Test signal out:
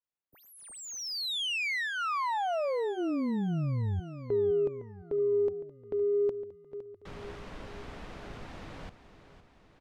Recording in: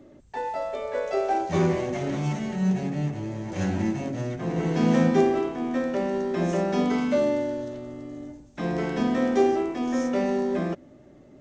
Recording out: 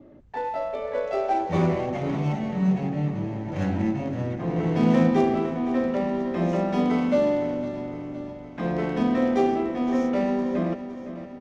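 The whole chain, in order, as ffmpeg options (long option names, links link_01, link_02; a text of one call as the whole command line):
ffmpeg -i in.wav -af "bandreject=frequency=380:width=12,adynamicequalizer=threshold=0.00158:dfrequency=1600:dqfactor=6.1:tfrequency=1600:tqfactor=6.1:attack=5:release=100:ratio=0.375:range=3:mode=cutabove:tftype=bell,adynamicsmooth=sensitivity=3.5:basefreq=2700,aecho=1:1:511|1022|1533|2044|2555|3066:0.224|0.128|0.0727|0.0415|0.0236|0.0135,volume=1.5dB" out.wav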